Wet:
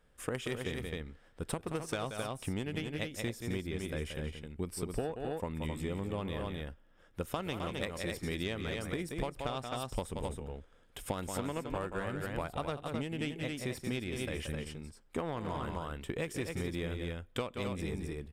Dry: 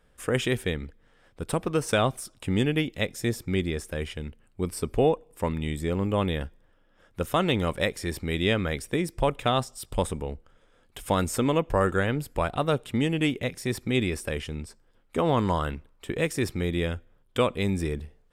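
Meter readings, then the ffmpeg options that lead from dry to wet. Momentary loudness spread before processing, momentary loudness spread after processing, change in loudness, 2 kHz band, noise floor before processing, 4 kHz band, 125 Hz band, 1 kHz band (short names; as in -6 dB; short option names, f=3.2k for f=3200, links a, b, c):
11 LU, 5 LU, -10.5 dB, -9.5 dB, -62 dBFS, -9.5 dB, -9.5 dB, -11.0 dB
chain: -af "aeval=exprs='0.282*(cos(1*acos(clip(val(0)/0.282,-1,1)))-cos(1*PI/2))+0.0398*(cos(3*acos(clip(val(0)/0.282,-1,1)))-cos(3*PI/2))':c=same,aecho=1:1:177.8|262.4:0.316|0.447,acompressor=threshold=-32dB:ratio=10"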